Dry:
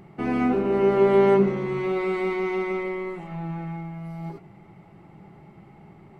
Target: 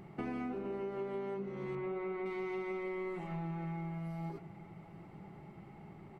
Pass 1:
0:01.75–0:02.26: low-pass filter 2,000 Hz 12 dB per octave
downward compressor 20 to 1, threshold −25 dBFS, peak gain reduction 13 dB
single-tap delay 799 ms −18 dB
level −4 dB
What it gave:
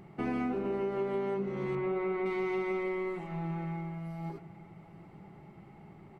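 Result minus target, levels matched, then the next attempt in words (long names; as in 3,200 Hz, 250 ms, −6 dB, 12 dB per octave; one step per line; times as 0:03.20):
downward compressor: peak gain reduction −6.5 dB
0:01.75–0:02.26: low-pass filter 2,000 Hz 12 dB per octave
downward compressor 20 to 1, threshold −32 dBFS, peak gain reduction 19.5 dB
single-tap delay 799 ms −18 dB
level −4 dB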